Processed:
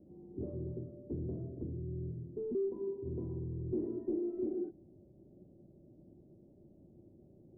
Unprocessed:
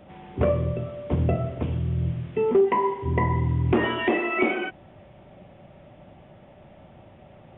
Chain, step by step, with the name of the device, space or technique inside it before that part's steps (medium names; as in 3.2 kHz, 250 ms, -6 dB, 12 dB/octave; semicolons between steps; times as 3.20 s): overdriven synthesiser ladder filter (saturation -25.5 dBFS, distortion -8 dB; four-pole ladder low-pass 390 Hz, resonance 60%); trim -1.5 dB